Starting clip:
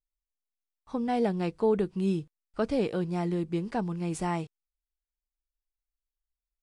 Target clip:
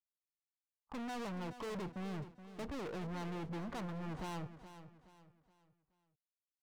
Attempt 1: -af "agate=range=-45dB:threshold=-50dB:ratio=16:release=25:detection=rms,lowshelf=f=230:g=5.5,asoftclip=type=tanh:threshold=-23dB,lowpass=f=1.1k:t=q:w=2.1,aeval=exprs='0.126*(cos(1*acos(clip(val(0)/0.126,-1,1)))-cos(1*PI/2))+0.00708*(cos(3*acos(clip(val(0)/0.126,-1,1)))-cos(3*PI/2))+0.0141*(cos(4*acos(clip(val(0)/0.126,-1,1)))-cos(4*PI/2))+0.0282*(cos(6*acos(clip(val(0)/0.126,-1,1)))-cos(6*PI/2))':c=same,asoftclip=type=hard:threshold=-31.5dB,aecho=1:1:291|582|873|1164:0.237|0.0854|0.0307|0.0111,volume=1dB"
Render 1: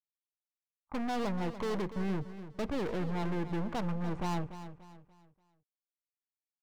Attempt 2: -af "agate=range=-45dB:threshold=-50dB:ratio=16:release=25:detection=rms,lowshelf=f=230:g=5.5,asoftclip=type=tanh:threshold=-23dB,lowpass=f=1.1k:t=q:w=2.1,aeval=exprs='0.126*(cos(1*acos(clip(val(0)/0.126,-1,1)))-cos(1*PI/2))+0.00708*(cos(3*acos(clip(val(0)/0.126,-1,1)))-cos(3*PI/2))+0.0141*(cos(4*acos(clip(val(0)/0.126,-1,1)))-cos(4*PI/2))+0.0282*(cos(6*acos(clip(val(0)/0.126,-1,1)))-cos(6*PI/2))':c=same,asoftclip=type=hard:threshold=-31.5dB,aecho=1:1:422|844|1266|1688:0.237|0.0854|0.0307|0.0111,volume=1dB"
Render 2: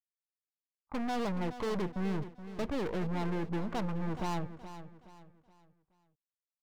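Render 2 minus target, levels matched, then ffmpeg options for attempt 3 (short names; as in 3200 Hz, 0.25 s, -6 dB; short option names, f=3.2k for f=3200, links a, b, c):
hard clip: distortion -5 dB
-af "agate=range=-45dB:threshold=-50dB:ratio=16:release=25:detection=rms,lowshelf=f=230:g=5.5,asoftclip=type=tanh:threshold=-23dB,lowpass=f=1.1k:t=q:w=2.1,aeval=exprs='0.126*(cos(1*acos(clip(val(0)/0.126,-1,1)))-cos(1*PI/2))+0.00708*(cos(3*acos(clip(val(0)/0.126,-1,1)))-cos(3*PI/2))+0.0141*(cos(4*acos(clip(val(0)/0.126,-1,1)))-cos(4*PI/2))+0.0282*(cos(6*acos(clip(val(0)/0.126,-1,1)))-cos(6*PI/2))':c=same,asoftclip=type=hard:threshold=-42dB,aecho=1:1:422|844|1266|1688:0.237|0.0854|0.0307|0.0111,volume=1dB"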